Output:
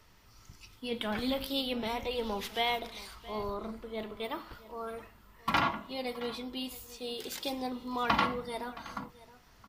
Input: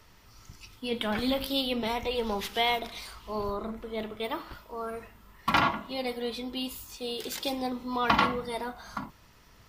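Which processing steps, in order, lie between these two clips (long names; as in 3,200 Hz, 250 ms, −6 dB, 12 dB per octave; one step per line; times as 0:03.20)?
single-tap delay 671 ms −18.5 dB
level −4 dB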